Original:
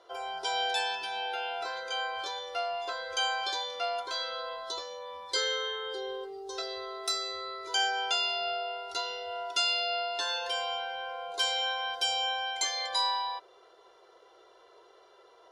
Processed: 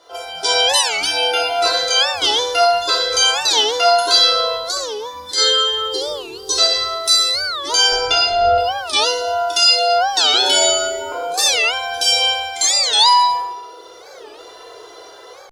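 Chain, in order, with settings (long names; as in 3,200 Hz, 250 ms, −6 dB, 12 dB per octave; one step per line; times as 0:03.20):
0:07.92–0:08.58: RIAA equalisation playback
reverb reduction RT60 1.4 s
bass and treble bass +3 dB, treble +10 dB
automatic gain control gain up to 11 dB
brickwall limiter −14 dBFS, peak gain reduction 11 dB
0:04.54–0:05.38: downward compressor 2 to 1, threshold −33 dBFS, peak gain reduction 7 dB
0:10.34–0:11.12: frequency shifter −120 Hz
flutter between parallel walls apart 10.7 metres, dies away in 0.4 s
feedback delay network reverb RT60 1.1 s, low-frequency decay 0.95×, high-frequency decay 0.8×, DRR −4 dB
wow of a warped record 45 rpm, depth 250 cents
level +5 dB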